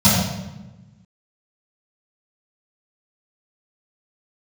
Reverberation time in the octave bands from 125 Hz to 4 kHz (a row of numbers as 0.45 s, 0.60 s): 1.7 s, 1.5 s, 1.1 s, 1.0 s, 0.90 s, 0.80 s